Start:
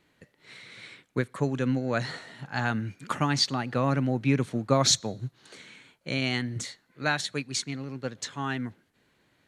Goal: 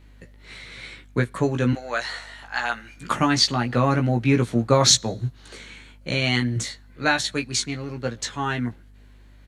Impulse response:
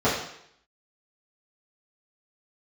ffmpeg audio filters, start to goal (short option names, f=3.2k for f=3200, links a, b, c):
-filter_complex "[0:a]asettb=1/sr,asplit=3[a][b][c];[a]atrim=end=1.734[d];[b]atrim=start=1.73:end=2.96,asetpts=PTS-STARTPTS,afade=t=in:d=0.004:c=qsin,afade=t=out:st=1.226:d=0.004:c=qsin,highpass=750[e];[c]atrim=start=2.956[f];[d][e]acrossfade=d=0.004:c1=hsin:c2=qsin[g];[g][f]acrossfade=d=0.004:c1=qsin:c2=hsin,aeval=exprs='val(0)+0.00178*(sin(2*PI*50*n/s)+sin(2*PI*2*50*n/s)/2+sin(2*PI*3*50*n/s)/3+sin(2*PI*4*50*n/s)/4+sin(2*PI*5*50*n/s)/5)':c=same,asplit=2[h][i];[i]adelay=17,volume=-4.5dB[j];[h][j]amix=inputs=2:normalize=0,volume=5dB"